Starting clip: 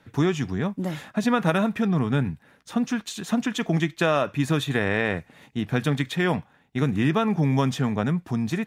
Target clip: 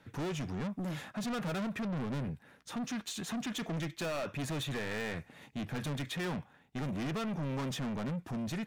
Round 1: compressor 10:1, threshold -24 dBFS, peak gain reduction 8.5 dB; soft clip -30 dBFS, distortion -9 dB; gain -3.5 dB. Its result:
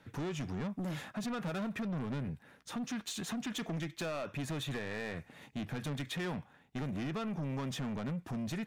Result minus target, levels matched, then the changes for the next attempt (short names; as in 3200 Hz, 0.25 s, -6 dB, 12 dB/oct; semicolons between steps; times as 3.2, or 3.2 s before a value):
compressor: peak gain reduction +8.5 dB
remove: compressor 10:1, threshold -24 dBFS, peak gain reduction 8.5 dB